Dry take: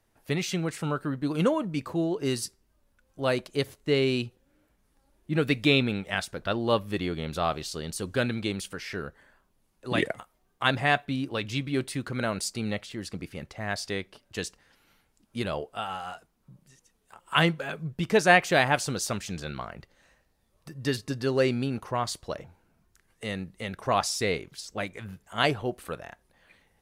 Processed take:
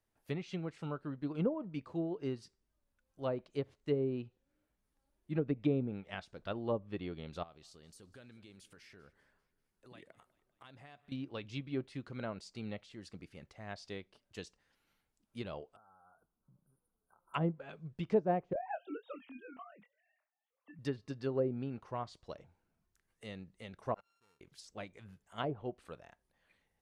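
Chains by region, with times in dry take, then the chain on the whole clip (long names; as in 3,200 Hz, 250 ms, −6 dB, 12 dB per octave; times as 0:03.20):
0:07.43–0:11.12: downward compressor 3 to 1, threshold −43 dBFS + repeating echo 196 ms, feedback 56%, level −21.5 dB
0:15.76–0:17.34: downward compressor 10 to 1, threshold −47 dBFS + linear-phase brick-wall band-stop 1,600–9,100 Hz
0:18.53–0:20.79: three sine waves on the formant tracks + downward compressor 2.5 to 1, threshold −24 dBFS + double-tracking delay 24 ms −6 dB
0:23.94–0:24.41: samples sorted by size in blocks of 32 samples + noise gate −21 dBFS, range −32 dB
whole clip: treble cut that deepens with the level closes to 600 Hz, closed at −19.5 dBFS; dynamic equaliser 1,700 Hz, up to −5 dB, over −46 dBFS, Q 1.6; expander for the loud parts 1.5 to 1, over −35 dBFS; level −5.5 dB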